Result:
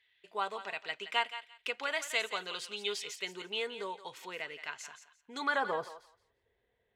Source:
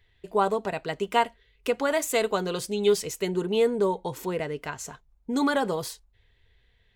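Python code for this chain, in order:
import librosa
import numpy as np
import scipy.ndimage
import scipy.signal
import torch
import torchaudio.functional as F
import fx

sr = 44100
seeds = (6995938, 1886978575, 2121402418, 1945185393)

y = fx.filter_sweep_bandpass(x, sr, from_hz=2700.0, to_hz=530.0, start_s=5.35, end_s=6.01, q=1.2)
y = fx.echo_thinned(y, sr, ms=172, feedback_pct=20, hz=880.0, wet_db=-10.5)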